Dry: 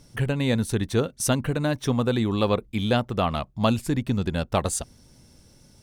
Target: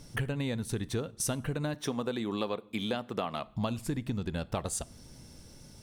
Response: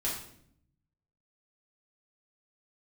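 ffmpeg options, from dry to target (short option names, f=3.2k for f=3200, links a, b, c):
-filter_complex "[0:a]asettb=1/sr,asplit=3[a][b][c];[a]atrim=end=1.744[d];[b]atrim=start=1.74:end=3.46,asetpts=PTS-STARTPTS,afade=t=in:d=0.004:c=qsin,afade=t=out:st=1.716:d=0.004:c=qsin,highpass=210[e];[c]atrim=start=3.456[f];[d][e]acrossfade=d=0.004:c1=hsin:c2=qsin[g];[g][f]acrossfade=d=0.004:c1=qsin:c2=hsin,acompressor=threshold=-32dB:ratio=6,asplit=2[h][i];[1:a]atrim=start_sample=2205[j];[i][j]afir=irnorm=-1:irlink=0,volume=-22dB[k];[h][k]amix=inputs=2:normalize=0,volume=1.5dB"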